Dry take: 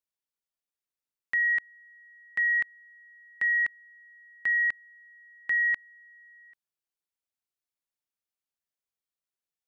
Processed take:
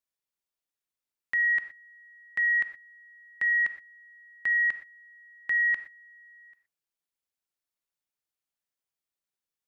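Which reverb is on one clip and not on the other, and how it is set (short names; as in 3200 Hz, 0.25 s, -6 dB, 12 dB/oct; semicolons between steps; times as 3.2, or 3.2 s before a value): non-linear reverb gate 0.14 s flat, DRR 9.5 dB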